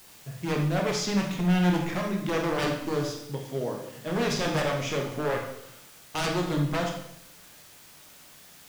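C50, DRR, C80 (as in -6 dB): 4.0 dB, 0.5 dB, 7.5 dB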